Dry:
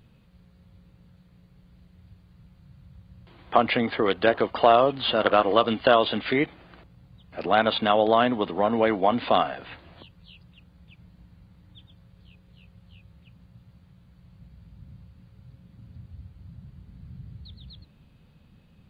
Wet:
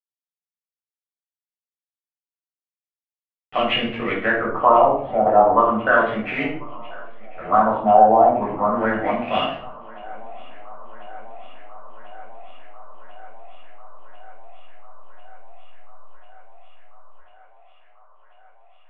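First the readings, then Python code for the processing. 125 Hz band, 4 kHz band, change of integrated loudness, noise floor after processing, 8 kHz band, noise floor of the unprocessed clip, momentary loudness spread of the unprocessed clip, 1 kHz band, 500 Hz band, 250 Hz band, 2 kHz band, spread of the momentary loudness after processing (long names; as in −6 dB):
+0.5 dB, −2.0 dB, +4.0 dB, below −85 dBFS, can't be measured, −58 dBFS, 6 LU, +7.0 dB, +2.5 dB, +1.5 dB, +5.0 dB, 20 LU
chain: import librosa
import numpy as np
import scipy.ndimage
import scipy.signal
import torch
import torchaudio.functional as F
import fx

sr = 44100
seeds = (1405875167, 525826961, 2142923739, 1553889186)

p1 = scipy.signal.sosfilt(scipy.signal.butter(2, 4300.0, 'lowpass', fs=sr, output='sos'), x)
p2 = fx.backlash(p1, sr, play_db=-26.5)
p3 = fx.filter_lfo_lowpass(p2, sr, shape='sine', hz=0.34, low_hz=760.0, high_hz=2900.0, q=7.1)
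p4 = p3 + fx.echo_thinned(p3, sr, ms=1043, feedback_pct=81, hz=260.0, wet_db=-23.0, dry=0)
p5 = fx.room_shoebox(p4, sr, seeds[0], volume_m3=600.0, walls='furnished', distance_m=6.5)
y = p5 * 10.0 ** (-11.0 / 20.0)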